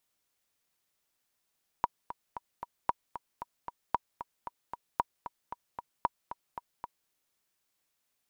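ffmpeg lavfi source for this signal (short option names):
-f lavfi -i "aevalsrc='pow(10,(-12.5-12.5*gte(mod(t,4*60/228),60/228))/20)*sin(2*PI*960*mod(t,60/228))*exp(-6.91*mod(t,60/228)/0.03)':d=5.26:s=44100"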